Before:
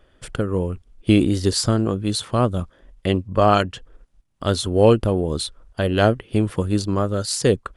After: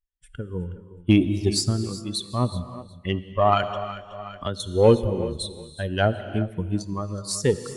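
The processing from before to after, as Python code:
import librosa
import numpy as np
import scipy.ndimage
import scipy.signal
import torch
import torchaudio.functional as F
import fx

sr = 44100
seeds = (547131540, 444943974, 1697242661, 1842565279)

p1 = fx.bin_expand(x, sr, power=2.0)
p2 = fx.cheby_harmonics(p1, sr, harmonics=(4,), levels_db=(-27,), full_scale_db=-5.0)
p3 = fx.wow_flutter(p2, sr, seeds[0], rate_hz=2.1, depth_cents=16.0)
p4 = p3 + fx.echo_feedback(p3, sr, ms=369, feedback_pct=21, wet_db=-17, dry=0)
p5 = fx.rev_gated(p4, sr, seeds[1], gate_ms=420, shape='flat', drr_db=11.5)
y = fx.band_squash(p5, sr, depth_pct=100, at=(3.63, 4.6))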